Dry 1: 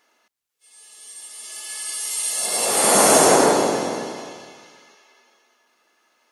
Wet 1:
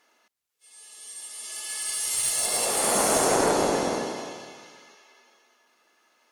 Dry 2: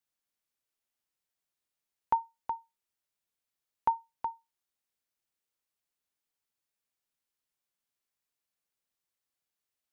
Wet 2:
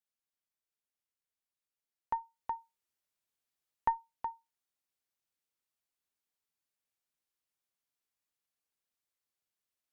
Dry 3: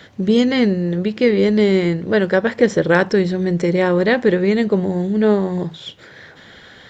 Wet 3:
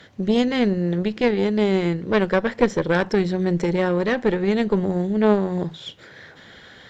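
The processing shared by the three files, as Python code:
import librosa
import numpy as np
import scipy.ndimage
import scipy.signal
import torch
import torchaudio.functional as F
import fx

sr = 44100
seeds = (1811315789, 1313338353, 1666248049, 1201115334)

y = fx.rider(x, sr, range_db=4, speed_s=0.5)
y = fx.cheby_harmonics(y, sr, harmonics=(2,), levels_db=(-7,), full_scale_db=-1.5)
y = y * librosa.db_to_amplitude(-5.0)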